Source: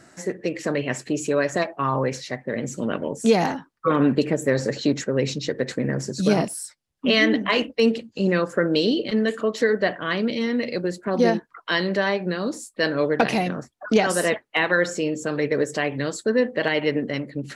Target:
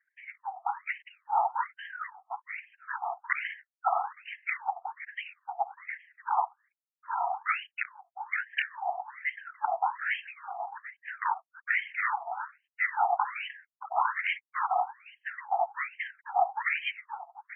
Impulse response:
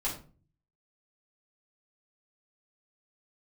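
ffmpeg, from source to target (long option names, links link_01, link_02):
-af "anlmdn=0.1,afftfilt=real='hypot(re,im)*cos(2*PI*random(0))':imag='hypot(re,im)*sin(2*PI*random(1))':win_size=512:overlap=0.75,highpass=frequency=330:width_type=q:width=0.5412,highpass=frequency=330:width_type=q:width=1.307,lowpass=frequency=3000:width_type=q:width=0.5176,lowpass=frequency=3000:width_type=q:width=0.7071,lowpass=frequency=3000:width_type=q:width=1.932,afreqshift=250,aeval=exprs='(mod(6.68*val(0)+1,2)-1)/6.68':channel_layout=same,afftfilt=real='re*between(b*sr/1024,930*pow(2300/930,0.5+0.5*sin(2*PI*1.2*pts/sr))/1.41,930*pow(2300/930,0.5+0.5*sin(2*PI*1.2*pts/sr))*1.41)':imag='im*between(b*sr/1024,930*pow(2300/930,0.5+0.5*sin(2*PI*1.2*pts/sr))/1.41,930*pow(2300/930,0.5+0.5*sin(2*PI*1.2*pts/sr))*1.41)':win_size=1024:overlap=0.75,volume=4dB"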